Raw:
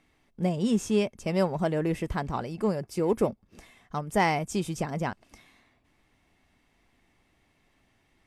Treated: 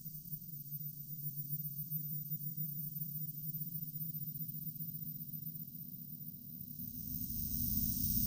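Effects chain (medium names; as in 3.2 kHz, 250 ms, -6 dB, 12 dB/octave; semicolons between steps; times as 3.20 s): backward echo that repeats 127 ms, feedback 44%, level -9 dB; inverse Chebyshev band-stop 450–2100 Hz, stop band 50 dB; inverted gate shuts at -34 dBFS, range -32 dB; Paulstretch 16×, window 0.25 s, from 4.82 s; on a send: echo with a slow build-up 133 ms, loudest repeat 8, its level -9 dB; on the sum: careless resampling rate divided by 3×, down filtered, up zero stuff; trim +14 dB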